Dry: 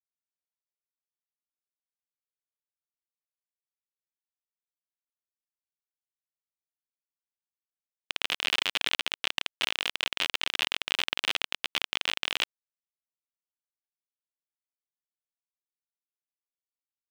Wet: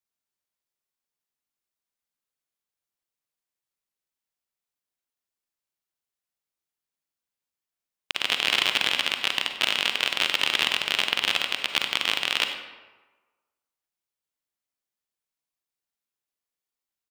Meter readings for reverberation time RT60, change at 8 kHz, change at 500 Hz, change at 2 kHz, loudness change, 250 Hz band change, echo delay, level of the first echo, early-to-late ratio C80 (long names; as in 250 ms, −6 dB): 1.3 s, +5.5 dB, +6.0 dB, +6.0 dB, +6.0 dB, +6.5 dB, 96 ms, −15.0 dB, 8.0 dB